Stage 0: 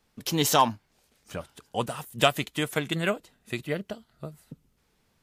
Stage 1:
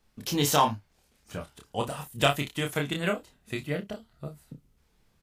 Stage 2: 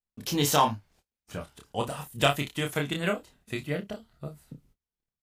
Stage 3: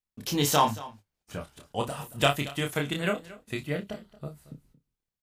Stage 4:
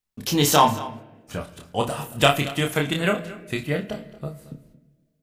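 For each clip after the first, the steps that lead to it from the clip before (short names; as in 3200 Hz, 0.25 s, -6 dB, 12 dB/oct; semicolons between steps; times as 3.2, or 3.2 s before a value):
low shelf 84 Hz +10 dB; on a send: early reflections 28 ms -4 dB, 58 ms -17 dB; on the sum: gain -3 dB
gate -60 dBFS, range -29 dB
echo 0.227 s -18.5 dB
on a send at -12.5 dB: LPF 4000 Hz + reverb RT60 1.4 s, pre-delay 12 ms; on the sum: gain +6 dB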